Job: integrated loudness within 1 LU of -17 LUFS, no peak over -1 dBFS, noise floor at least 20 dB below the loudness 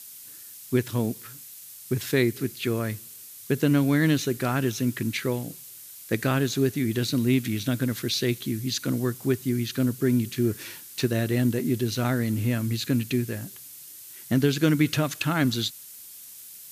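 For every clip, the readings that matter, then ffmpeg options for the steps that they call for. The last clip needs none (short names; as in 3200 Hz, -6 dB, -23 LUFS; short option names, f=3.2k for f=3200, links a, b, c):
noise floor -45 dBFS; noise floor target -46 dBFS; loudness -26.0 LUFS; peak -8.5 dBFS; loudness target -17.0 LUFS
-> -af "afftdn=nr=6:nf=-45"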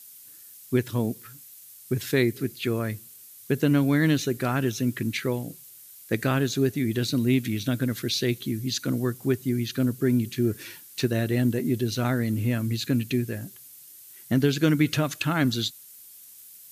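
noise floor -48 dBFS; loudness -26.0 LUFS; peak -8.5 dBFS; loudness target -17.0 LUFS
-> -af "volume=9dB,alimiter=limit=-1dB:level=0:latency=1"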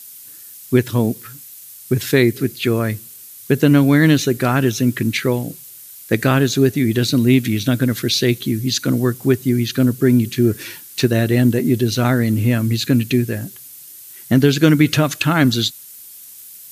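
loudness -17.0 LUFS; peak -1.0 dBFS; noise floor -39 dBFS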